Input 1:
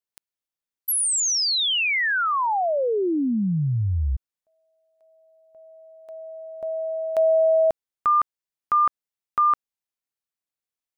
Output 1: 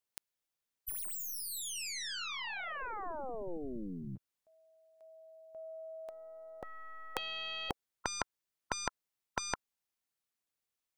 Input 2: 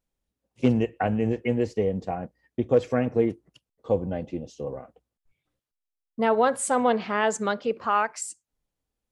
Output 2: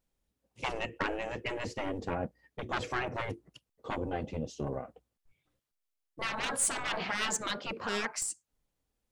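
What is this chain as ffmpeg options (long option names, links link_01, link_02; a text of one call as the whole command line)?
ffmpeg -i in.wav -af "aeval=exprs='0.422*(cos(1*acos(clip(val(0)/0.422,-1,1)))-cos(1*PI/2))+0.00531*(cos(3*acos(clip(val(0)/0.422,-1,1)))-cos(3*PI/2))+0.0211*(cos(4*acos(clip(val(0)/0.422,-1,1)))-cos(4*PI/2))+0.0299*(cos(7*acos(clip(val(0)/0.422,-1,1)))-cos(7*PI/2))':channel_layout=same,asoftclip=type=tanh:threshold=-19dB,afftfilt=real='re*lt(hypot(re,im),0.0794)':imag='im*lt(hypot(re,im),0.0794)':win_size=1024:overlap=0.75,volume=8dB" out.wav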